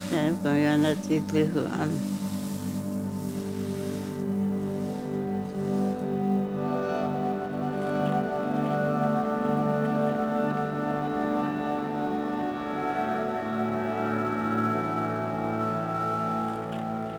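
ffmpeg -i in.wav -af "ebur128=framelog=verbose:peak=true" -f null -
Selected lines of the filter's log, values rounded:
Integrated loudness:
  I:         -28.2 LUFS
  Threshold: -38.2 LUFS
Loudness range:
  LRA:         3.6 LU
  Threshold: -48.4 LUFS
  LRA low:   -30.5 LUFS
  LRA high:  -26.9 LUFS
True peak:
  Peak:      -10.7 dBFS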